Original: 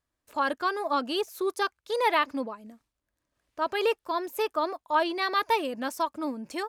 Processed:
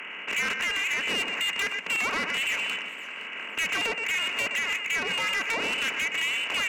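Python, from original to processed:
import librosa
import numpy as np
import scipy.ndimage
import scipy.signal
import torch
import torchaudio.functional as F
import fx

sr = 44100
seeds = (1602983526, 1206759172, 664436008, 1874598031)

p1 = fx.bin_compress(x, sr, power=0.4)
p2 = fx.freq_invert(p1, sr, carrier_hz=3200)
p3 = scipy.signal.sosfilt(scipy.signal.butter(12, 170.0, 'highpass', fs=sr, output='sos'), p2)
p4 = p3 + 10.0 ** (-11.0 / 20.0) * np.pad(p3, (int(121 * sr / 1000.0), 0))[:len(p3)]
p5 = fx.env_lowpass_down(p4, sr, base_hz=1500.0, full_db=-16.5)
p6 = fx.rider(p5, sr, range_db=10, speed_s=0.5)
p7 = 10.0 ** (-26.5 / 20.0) * np.tanh(p6 / 10.0 ** (-26.5 / 20.0))
p8 = p7 + fx.echo_feedback(p7, sr, ms=515, feedback_pct=35, wet_db=-16.5, dry=0)
y = p8 * librosa.db_to_amplitude(2.5)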